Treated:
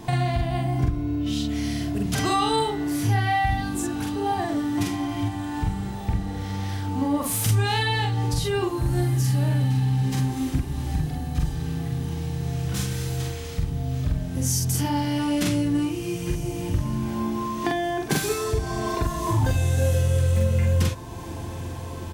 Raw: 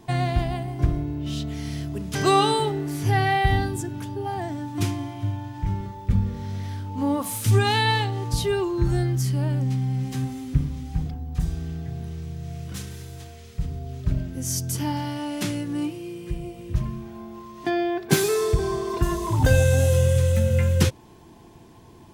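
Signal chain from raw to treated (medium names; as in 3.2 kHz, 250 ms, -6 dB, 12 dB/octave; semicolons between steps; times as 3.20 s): band-stop 390 Hz, Q 12; compression 4:1, threshold -34 dBFS, peak gain reduction 17.5 dB; doubling 45 ms -2 dB; echo that smears into a reverb 1806 ms, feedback 58%, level -15 dB; trim +9 dB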